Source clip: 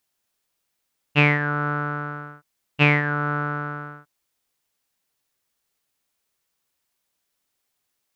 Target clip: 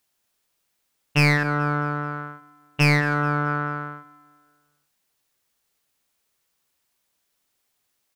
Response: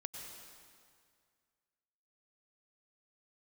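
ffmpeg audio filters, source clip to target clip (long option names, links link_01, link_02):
-filter_complex "[0:a]asettb=1/sr,asplit=3[link_01][link_02][link_03];[link_01]atrim=end=1.434[link_04];[link_02]atrim=start=1.43:end=3.47,asetpts=PTS-STARTPTS,afade=type=in:duration=0.004:curve=qsin,afade=type=out:start_time=2.036:duration=0.004:curve=qsin,adynamicequalizer=threshold=0.0251:dfrequency=1800:dqfactor=0.84:tfrequency=1800:tqfactor=0.84:attack=5:release=100:ratio=0.375:range=2:mode=cutabove:tftype=bell[link_05];[link_03]atrim=start=3.466[link_06];[link_04][link_05]acrossfade=duration=0.004:curve1=hsin:curve2=qsin[link_07];[link_07][link_06]acrossfade=duration=0.004:curve1=qsin:curve2=hsin,volume=16dB,asoftclip=hard,volume=-16dB,aecho=1:1:215|430|645|860:0.106|0.0498|0.0234|0.011,volume=3dB"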